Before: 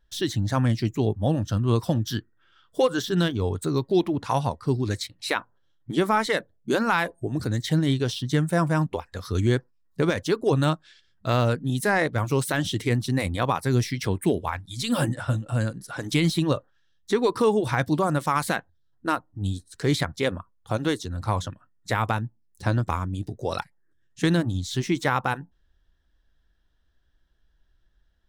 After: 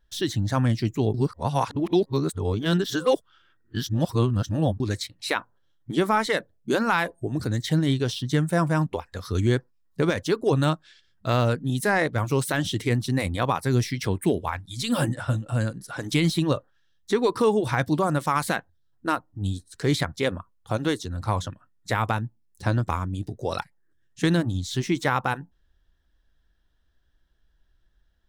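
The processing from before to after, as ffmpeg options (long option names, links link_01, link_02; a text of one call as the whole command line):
ffmpeg -i in.wav -filter_complex "[0:a]asplit=3[link_01][link_02][link_03];[link_01]atrim=end=1.142[link_04];[link_02]atrim=start=1.138:end=4.802,asetpts=PTS-STARTPTS,areverse[link_05];[link_03]atrim=start=4.798[link_06];[link_04][link_05]acrossfade=duration=0.004:curve1=hsin:curve2=hsin[link_07];[link_07][link_06]acrossfade=duration=0.004:curve1=hsin:curve2=hsin" out.wav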